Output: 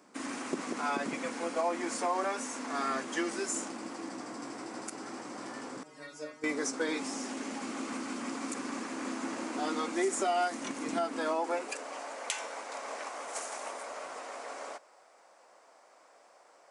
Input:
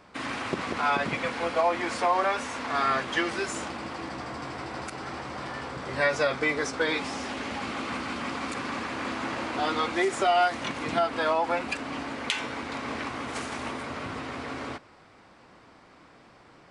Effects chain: resonant high shelf 5.1 kHz +10 dB, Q 1.5; high-pass sweep 260 Hz -> 600 Hz, 11.21–11.97 s; 5.83–6.44 s: inharmonic resonator 150 Hz, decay 0.35 s, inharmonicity 0.002; trim -8 dB

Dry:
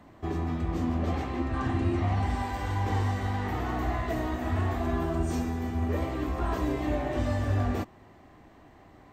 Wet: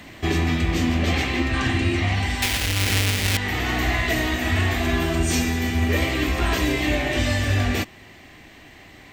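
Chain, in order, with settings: 2.42–3.37 s: square wave that keeps the level; resonant high shelf 1.6 kHz +11.5 dB, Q 1.5; gain riding within 5 dB 0.5 s; trim +4.5 dB

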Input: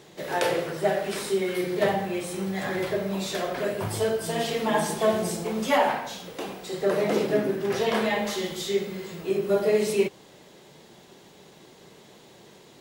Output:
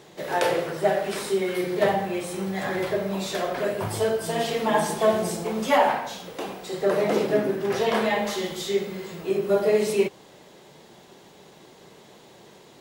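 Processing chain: peaking EQ 840 Hz +3 dB 1.8 oct

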